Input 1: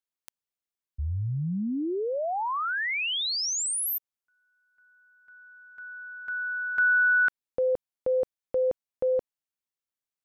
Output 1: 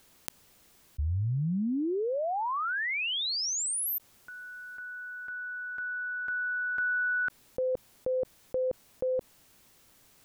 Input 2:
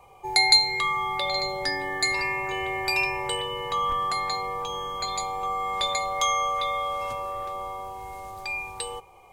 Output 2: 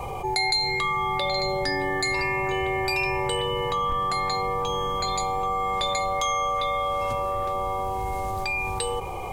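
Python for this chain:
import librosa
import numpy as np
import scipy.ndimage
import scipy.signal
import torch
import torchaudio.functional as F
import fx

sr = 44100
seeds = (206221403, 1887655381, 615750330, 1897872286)

y = fx.low_shelf(x, sr, hz=480.0, db=9.0)
y = fx.env_flatten(y, sr, amount_pct=70)
y = y * 10.0 ** (-9.0 / 20.0)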